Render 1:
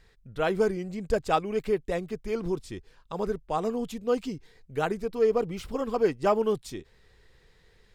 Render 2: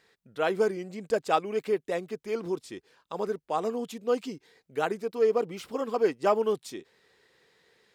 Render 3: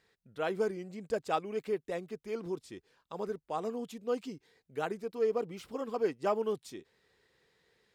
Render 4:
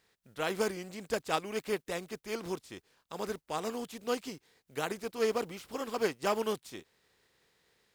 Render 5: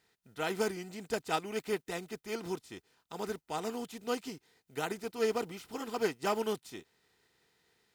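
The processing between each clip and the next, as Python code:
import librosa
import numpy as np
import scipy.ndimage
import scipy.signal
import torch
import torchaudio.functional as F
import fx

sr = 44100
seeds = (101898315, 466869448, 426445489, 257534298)

y1 = scipy.signal.sosfilt(scipy.signal.butter(2, 250.0, 'highpass', fs=sr, output='sos'), x)
y2 = fx.low_shelf(y1, sr, hz=120.0, db=11.0)
y2 = y2 * 10.0 ** (-7.0 / 20.0)
y3 = fx.spec_flatten(y2, sr, power=0.66)
y4 = fx.notch_comb(y3, sr, f0_hz=560.0)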